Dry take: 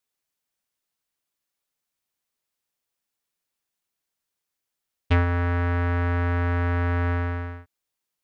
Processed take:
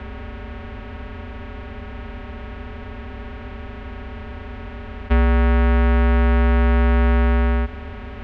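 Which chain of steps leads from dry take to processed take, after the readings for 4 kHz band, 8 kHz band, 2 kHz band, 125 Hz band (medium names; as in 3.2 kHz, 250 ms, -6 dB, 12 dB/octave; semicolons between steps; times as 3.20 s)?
+7.5 dB, no reading, +4.0 dB, +4.5 dB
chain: spectral levelling over time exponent 0.2; frequency shift -25 Hz; low-pass 1.2 kHz 6 dB/octave; trim +3 dB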